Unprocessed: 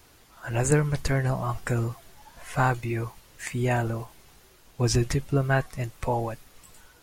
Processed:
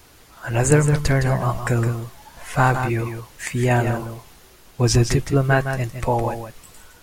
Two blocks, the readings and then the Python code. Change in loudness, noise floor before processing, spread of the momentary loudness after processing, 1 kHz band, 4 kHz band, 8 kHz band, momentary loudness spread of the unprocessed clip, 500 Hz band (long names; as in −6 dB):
+6.5 dB, −56 dBFS, 16 LU, +6.5 dB, +6.5 dB, +6.5 dB, 14 LU, +6.5 dB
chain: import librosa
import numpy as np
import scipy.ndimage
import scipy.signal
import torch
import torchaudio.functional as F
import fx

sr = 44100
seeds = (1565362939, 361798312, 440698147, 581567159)

p1 = x + fx.echo_single(x, sr, ms=162, db=-8.0, dry=0)
y = p1 * librosa.db_to_amplitude(6.0)